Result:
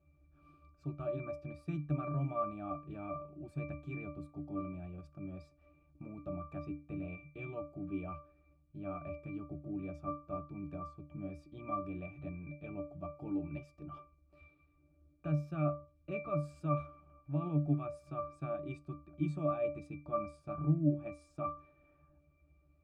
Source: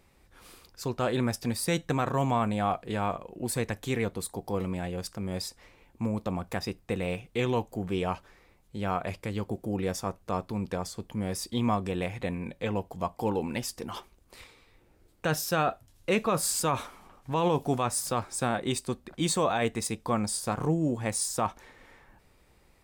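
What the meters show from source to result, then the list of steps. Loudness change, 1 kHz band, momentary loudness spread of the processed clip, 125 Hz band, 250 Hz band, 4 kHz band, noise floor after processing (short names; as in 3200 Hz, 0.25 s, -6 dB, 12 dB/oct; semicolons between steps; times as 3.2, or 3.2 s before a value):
-9.5 dB, -12.0 dB, 13 LU, -5.0 dB, -8.0 dB, under -30 dB, -70 dBFS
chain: octave resonator D, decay 0.33 s; gain +6.5 dB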